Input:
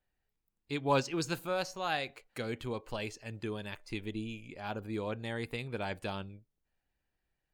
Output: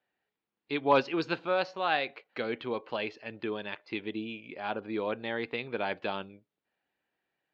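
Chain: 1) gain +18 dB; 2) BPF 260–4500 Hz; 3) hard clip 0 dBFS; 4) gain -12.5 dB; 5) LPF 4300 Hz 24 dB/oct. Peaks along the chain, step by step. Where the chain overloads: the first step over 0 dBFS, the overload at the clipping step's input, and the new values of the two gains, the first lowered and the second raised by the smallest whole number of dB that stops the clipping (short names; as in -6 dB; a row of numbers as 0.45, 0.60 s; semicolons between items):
+2.0, +3.0, 0.0, -12.5, -12.0 dBFS; step 1, 3.0 dB; step 1 +15 dB, step 4 -9.5 dB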